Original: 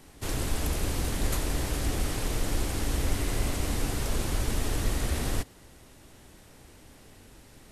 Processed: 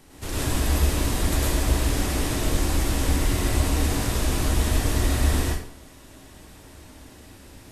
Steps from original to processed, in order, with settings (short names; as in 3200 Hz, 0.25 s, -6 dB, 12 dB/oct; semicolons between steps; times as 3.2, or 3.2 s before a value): plate-style reverb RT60 0.53 s, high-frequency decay 0.85×, pre-delay 90 ms, DRR -5 dB